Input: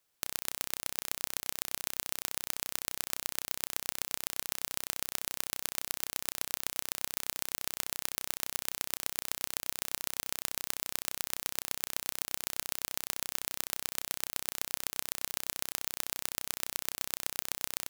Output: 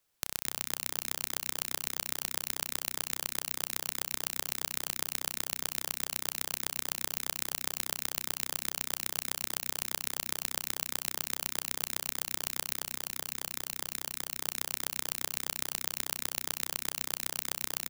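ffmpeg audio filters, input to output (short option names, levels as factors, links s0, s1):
-filter_complex "[0:a]lowshelf=f=150:g=5,asplit=2[s0][s1];[s1]asplit=6[s2][s3][s4][s5][s6][s7];[s2]adelay=220,afreqshift=100,volume=0.531[s8];[s3]adelay=440,afreqshift=200,volume=0.272[s9];[s4]adelay=660,afreqshift=300,volume=0.138[s10];[s5]adelay=880,afreqshift=400,volume=0.0708[s11];[s6]adelay=1100,afreqshift=500,volume=0.0359[s12];[s7]adelay=1320,afreqshift=600,volume=0.0184[s13];[s8][s9][s10][s11][s12][s13]amix=inputs=6:normalize=0[s14];[s0][s14]amix=inputs=2:normalize=0,asettb=1/sr,asplit=3[s15][s16][s17];[s15]atrim=end=12.844[s18];[s16]atrim=start=12.84:end=14.38,asetpts=PTS-STARTPTS,afade=t=in:d=0.004:c=qsin,afade=t=out:st=1.536:d=0.004:c=qsin,asoftclip=type=hard:threshold=0.299[s19];[s17]atrim=start=14.376[s20];[s18][s19]acrossfade=d=0.004:c1=hsin:c2=qsin[s21];[s21][s20]acrossfade=d=0.004:c1=qsin:c2=hsin,asplit=2[s22][s23];[s23]adelay=233.2,volume=0.112,highshelf=f=4000:g=-5.25[s24];[s22][s24]amix=inputs=2:normalize=0"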